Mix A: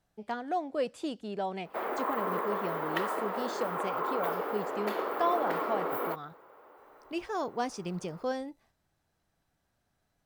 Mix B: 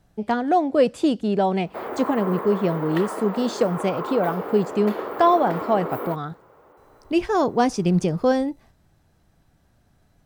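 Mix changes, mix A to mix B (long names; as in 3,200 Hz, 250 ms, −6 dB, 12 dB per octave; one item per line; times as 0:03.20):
speech +10.0 dB
master: add low-shelf EQ 380 Hz +9.5 dB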